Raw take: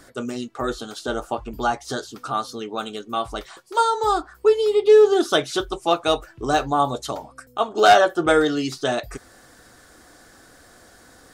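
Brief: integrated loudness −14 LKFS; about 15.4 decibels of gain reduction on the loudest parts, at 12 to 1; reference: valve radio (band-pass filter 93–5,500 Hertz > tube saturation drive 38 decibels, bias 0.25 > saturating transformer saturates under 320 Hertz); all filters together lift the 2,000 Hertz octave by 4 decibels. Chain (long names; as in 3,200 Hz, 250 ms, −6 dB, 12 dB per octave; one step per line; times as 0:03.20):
parametric band 2,000 Hz +6 dB
downward compressor 12 to 1, threshold −24 dBFS
band-pass filter 93–5,500 Hz
tube saturation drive 38 dB, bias 0.25
saturating transformer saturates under 320 Hz
level +30 dB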